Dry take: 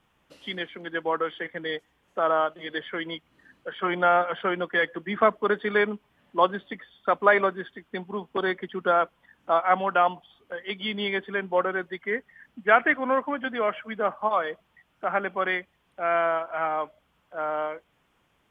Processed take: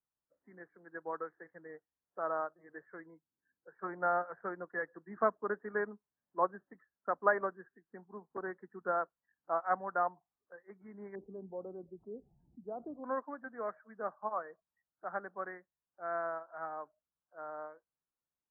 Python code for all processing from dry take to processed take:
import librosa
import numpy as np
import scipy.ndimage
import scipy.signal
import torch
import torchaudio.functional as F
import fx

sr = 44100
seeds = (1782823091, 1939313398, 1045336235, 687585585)

y = fx.chain(x, sr, fx.lowpass(hz=1300.0, slope=6),
    fx.notch_comb(f0_hz=610.0), at=(3.06, 3.75))
y = fx.chain(y, sr, fx.gaussian_blur(sigma=14.0),
    fx.env_flatten(amount_pct=50), at=(11.15, 13.04))
y = scipy.signal.sosfilt(scipy.signal.butter(12, 1800.0, 'lowpass', fs=sr, output='sos'), y)
y = fx.noise_reduce_blind(y, sr, reduce_db=13)
y = fx.upward_expand(y, sr, threshold_db=-36.0, expansion=1.5)
y = F.gain(torch.from_numpy(y), -8.5).numpy()